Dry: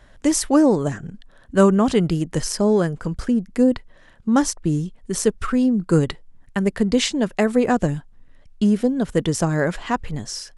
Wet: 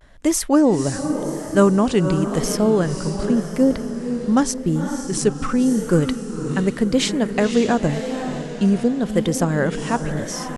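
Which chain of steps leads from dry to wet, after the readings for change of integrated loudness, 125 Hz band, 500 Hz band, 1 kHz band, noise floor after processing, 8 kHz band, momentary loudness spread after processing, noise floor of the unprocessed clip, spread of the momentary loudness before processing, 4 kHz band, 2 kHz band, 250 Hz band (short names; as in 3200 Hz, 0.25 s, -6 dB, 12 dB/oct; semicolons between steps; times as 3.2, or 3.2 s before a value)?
+0.5 dB, +1.0 dB, +1.0 dB, +0.5 dB, -31 dBFS, +1.0 dB, 9 LU, -50 dBFS, 11 LU, +0.5 dB, +1.0 dB, +1.0 dB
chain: diffused feedback echo 0.534 s, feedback 51%, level -8 dB; vibrato 0.89 Hz 81 cents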